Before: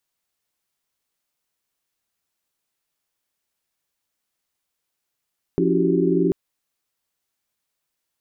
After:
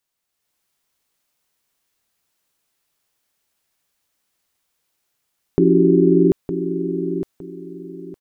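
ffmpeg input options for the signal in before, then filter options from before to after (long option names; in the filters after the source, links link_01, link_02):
-f lavfi -i "aevalsrc='0.075*(sin(2*PI*174.61*t)+sin(2*PI*277.18*t)+sin(2*PI*329.63*t)+sin(2*PI*369.99*t)+sin(2*PI*392*t))':duration=0.74:sample_rate=44100"
-filter_complex "[0:a]dynaudnorm=framelen=280:gausssize=3:maxgain=6.5dB,asplit=2[link_01][link_02];[link_02]aecho=0:1:911|1822|2733:0.335|0.0904|0.0244[link_03];[link_01][link_03]amix=inputs=2:normalize=0"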